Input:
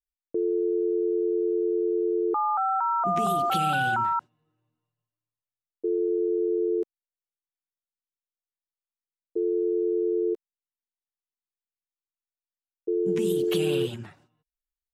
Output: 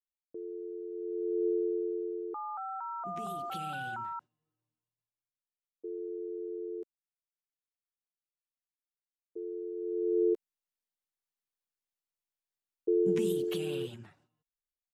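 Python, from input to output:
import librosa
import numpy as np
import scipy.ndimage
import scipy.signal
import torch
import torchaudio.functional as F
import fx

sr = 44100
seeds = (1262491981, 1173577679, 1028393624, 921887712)

y = fx.gain(x, sr, db=fx.line((0.9, -15.5), (1.47, -3.5), (2.29, -13.5), (9.75, -13.5), (10.22, -1.0), (13.02, -1.0), (13.61, -10.0)))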